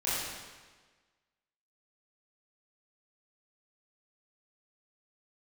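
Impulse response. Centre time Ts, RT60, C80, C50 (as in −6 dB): 110 ms, 1.4 s, 0.0 dB, −2.5 dB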